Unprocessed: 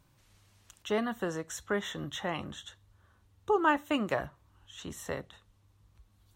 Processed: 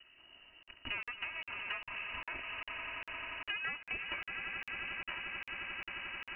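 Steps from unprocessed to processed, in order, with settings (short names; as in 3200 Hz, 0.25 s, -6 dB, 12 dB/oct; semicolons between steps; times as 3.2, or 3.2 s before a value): minimum comb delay 3.1 ms; on a send: swelling echo 88 ms, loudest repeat 8, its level -15.5 dB; on the sum: inverted band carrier 2900 Hz; compressor 4:1, threshold -47 dBFS, peak gain reduction 21 dB; crackling interface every 0.40 s, samples 2048, zero, from 0.63; gain +6.5 dB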